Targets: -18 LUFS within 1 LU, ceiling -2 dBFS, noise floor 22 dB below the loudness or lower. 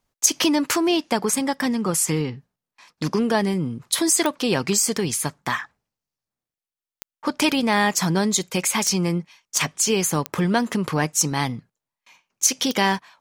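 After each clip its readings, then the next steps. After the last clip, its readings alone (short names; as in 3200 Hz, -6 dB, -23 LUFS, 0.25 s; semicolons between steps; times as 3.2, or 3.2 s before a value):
clicks 6; loudness -21.5 LUFS; peak -2.0 dBFS; loudness target -18.0 LUFS
-> de-click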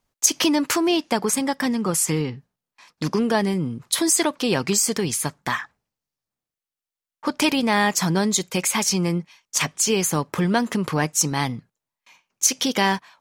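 clicks 0; loudness -21.5 LUFS; peak -2.0 dBFS; loudness target -18.0 LUFS
-> gain +3.5 dB; limiter -2 dBFS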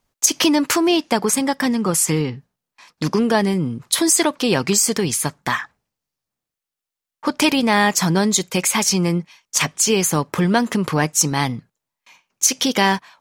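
loudness -18.5 LUFS; peak -2.0 dBFS; noise floor -87 dBFS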